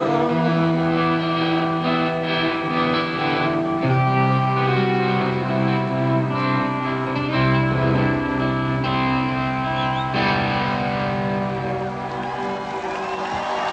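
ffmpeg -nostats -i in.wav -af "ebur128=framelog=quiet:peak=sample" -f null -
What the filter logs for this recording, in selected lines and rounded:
Integrated loudness:
  I:         -20.8 LUFS
  Threshold: -30.8 LUFS
Loudness range:
  LRA:         2.8 LU
  Threshold: -40.7 LUFS
  LRA low:   -22.6 LUFS
  LRA high:  -19.8 LUFS
Sample peak:
  Peak:       -6.7 dBFS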